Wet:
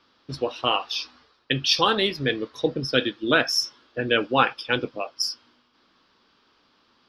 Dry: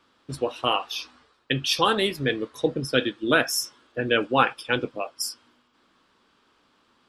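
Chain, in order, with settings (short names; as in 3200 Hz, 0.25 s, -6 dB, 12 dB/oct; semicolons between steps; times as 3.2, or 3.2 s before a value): resonant high shelf 6500 Hz -8.5 dB, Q 3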